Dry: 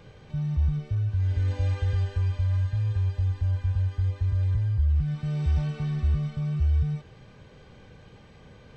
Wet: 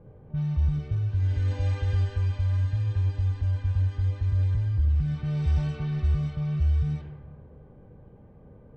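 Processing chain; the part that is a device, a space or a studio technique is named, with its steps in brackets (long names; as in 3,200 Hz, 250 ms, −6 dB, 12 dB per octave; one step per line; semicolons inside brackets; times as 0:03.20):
saturated reverb return (on a send at −9.5 dB: convolution reverb RT60 1.8 s, pre-delay 11 ms + soft clipping −26.5 dBFS, distortion −11 dB)
on the sum: low-pass that shuts in the quiet parts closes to 570 Hz, open at −21.5 dBFS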